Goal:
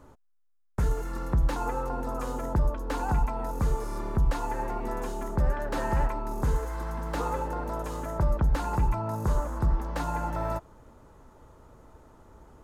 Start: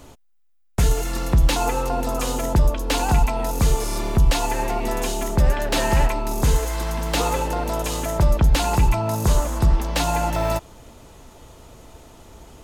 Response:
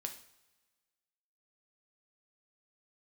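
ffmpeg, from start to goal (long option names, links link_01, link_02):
-af "highshelf=frequency=2000:width_type=q:width=1.5:gain=-10,bandreject=frequency=690:width=12,volume=-8dB"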